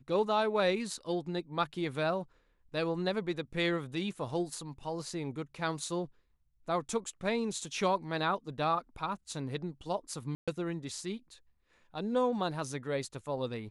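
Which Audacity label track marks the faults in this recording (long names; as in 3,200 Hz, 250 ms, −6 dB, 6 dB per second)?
10.350000	10.480000	drop-out 126 ms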